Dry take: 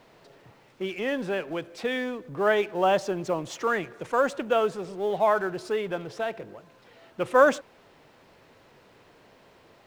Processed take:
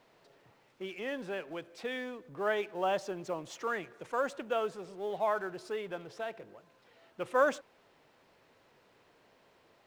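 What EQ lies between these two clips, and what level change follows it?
bass shelf 250 Hz -5 dB; -8.0 dB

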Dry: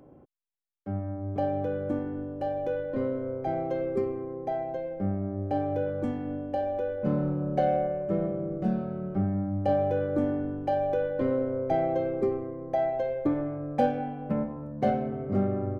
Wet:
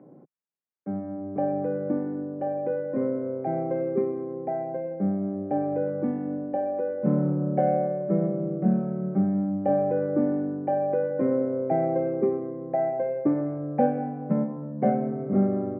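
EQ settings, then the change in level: elliptic band-pass 160–2200 Hz, stop band 40 dB; tilt EQ -2.5 dB/octave; 0.0 dB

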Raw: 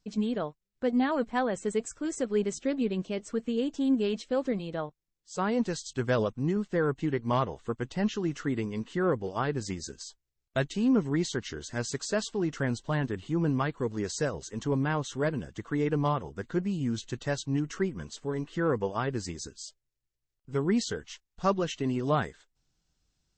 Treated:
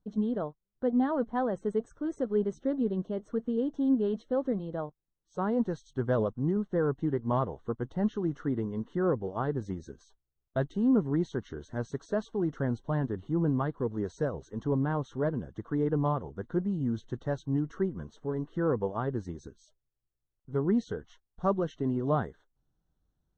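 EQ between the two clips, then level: boxcar filter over 18 samples; 0.0 dB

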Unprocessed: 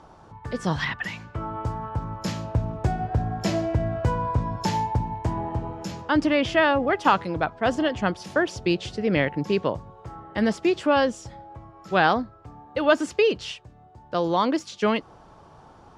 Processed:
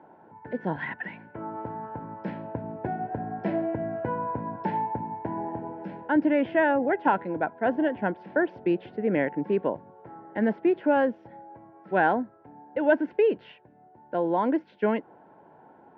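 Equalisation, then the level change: Chebyshev band-pass 240–1700 Hz, order 2; Butterworth band-stop 1.2 kHz, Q 3.6; distance through air 280 m; 0.0 dB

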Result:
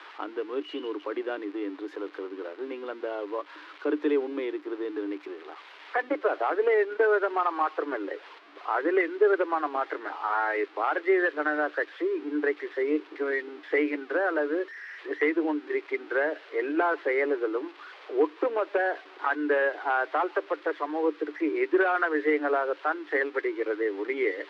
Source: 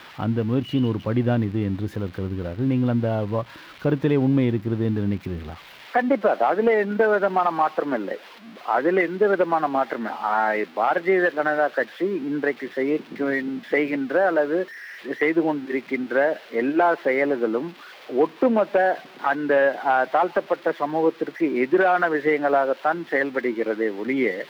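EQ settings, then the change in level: low-pass 5.1 kHz 12 dB/octave; dynamic bell 820 Hz, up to -5 dB, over -33 dBFS, Q 1.3; rippled Chebyshev high-pass 290 Hz, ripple 6 dB; 0.0 dB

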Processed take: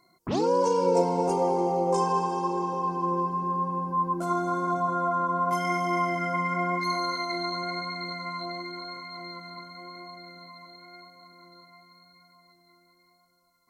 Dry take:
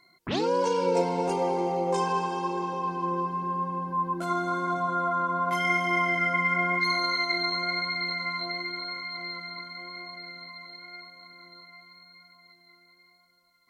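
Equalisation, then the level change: high-order bell 2.5 kHz -10 dB; +2.0 dB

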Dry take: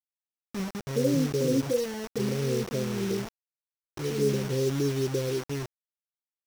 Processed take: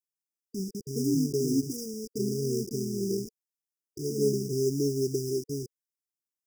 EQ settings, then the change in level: brick-wall FIR band-stop 450–4800 Hz; bass shelf 120 Hz -12 dB; +2.0 dB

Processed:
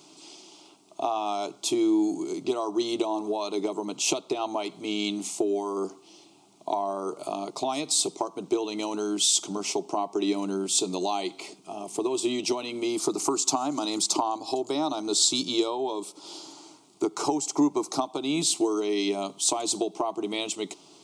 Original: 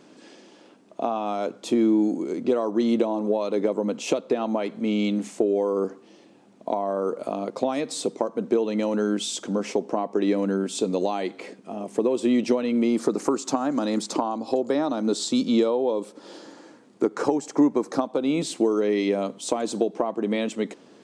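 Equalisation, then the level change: tilt shelf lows -6.5 dB, about 1.4 kHz; static phaser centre 340 Hz, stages 8; +4.0 dB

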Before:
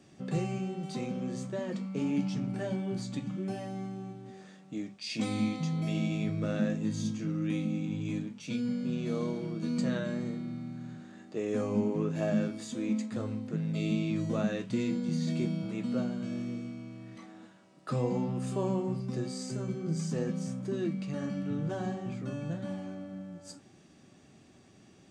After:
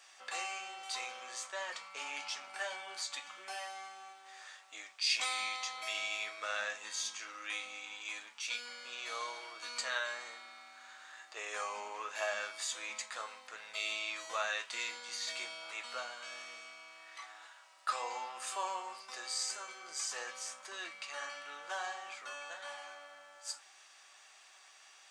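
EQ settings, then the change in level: high-pass 910 Hz 24 dB/octave; +7.5 dB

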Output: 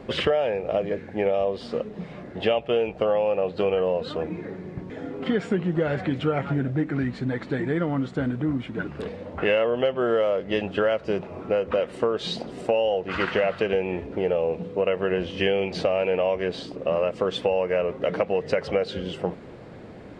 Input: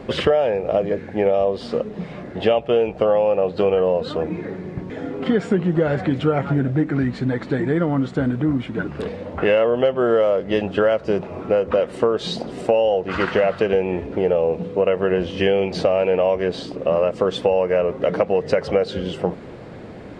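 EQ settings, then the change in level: dynamic bell 2.6 kHz, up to +5 dB, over -37 dBFS, Q 1; -5.5 dB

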